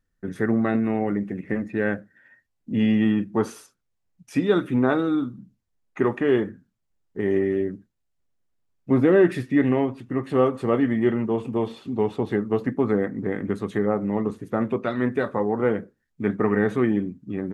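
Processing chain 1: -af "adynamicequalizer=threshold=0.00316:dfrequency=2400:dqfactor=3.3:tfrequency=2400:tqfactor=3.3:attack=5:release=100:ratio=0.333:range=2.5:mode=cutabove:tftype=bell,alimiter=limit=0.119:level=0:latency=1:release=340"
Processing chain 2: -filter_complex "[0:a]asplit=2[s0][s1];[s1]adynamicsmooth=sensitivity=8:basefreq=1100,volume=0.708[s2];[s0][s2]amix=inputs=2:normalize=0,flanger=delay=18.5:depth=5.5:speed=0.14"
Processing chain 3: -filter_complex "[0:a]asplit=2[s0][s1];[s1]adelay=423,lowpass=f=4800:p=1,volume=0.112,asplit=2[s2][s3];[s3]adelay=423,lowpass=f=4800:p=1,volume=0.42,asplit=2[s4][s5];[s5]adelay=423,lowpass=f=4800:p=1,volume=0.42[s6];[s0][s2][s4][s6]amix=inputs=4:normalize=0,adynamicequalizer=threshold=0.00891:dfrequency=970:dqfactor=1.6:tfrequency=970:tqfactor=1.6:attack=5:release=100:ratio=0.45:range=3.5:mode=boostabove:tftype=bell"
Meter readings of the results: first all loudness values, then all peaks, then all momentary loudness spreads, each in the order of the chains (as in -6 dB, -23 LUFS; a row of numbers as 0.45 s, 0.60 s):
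-30.0 LUFS, -22.5 LUFS, -23.0 LUFS; -18.5 dBFS, -4.0 dBFS, -4.5 dBFS; 7 LU, 10 LU, 12 LU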